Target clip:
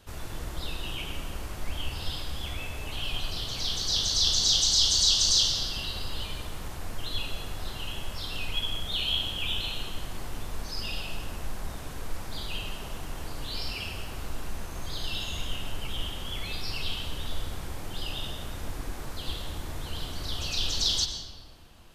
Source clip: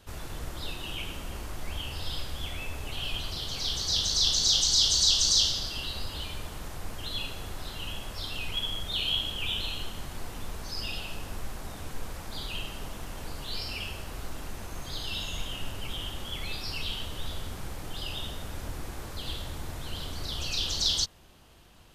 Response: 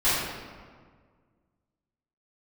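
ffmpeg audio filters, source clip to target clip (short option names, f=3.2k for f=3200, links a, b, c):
-filter_complex "[0:a]asplit=2[a][b];[1:a]atrim=start_sample=2205,adelay=91[c];[b][c]afir=irnorm=-1:irlink=0,volume=-22.5dB[d];[a][d]amix=inputs=2:normalize=0"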